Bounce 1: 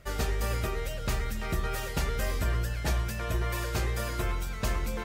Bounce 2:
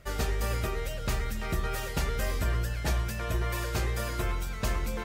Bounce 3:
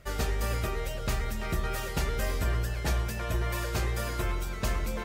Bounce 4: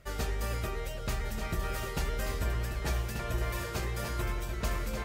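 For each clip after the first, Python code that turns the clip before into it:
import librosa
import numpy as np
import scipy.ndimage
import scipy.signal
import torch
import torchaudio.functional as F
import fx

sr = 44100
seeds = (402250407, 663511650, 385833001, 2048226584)

y1 = x
y2 = fx.echo_wet_bandpass(y1, sr, ms=160, feedback_pct=82, hz=480.0, wet_db=-13)
y3 = y2 + 10.0 ** (-7.0 / 20.0) * np.pad(y2, (int(1185 * sr / 1000.0), 0))[:len(y2)]
y3 = y3 * 10.0 ** (-3.5 / 20.0)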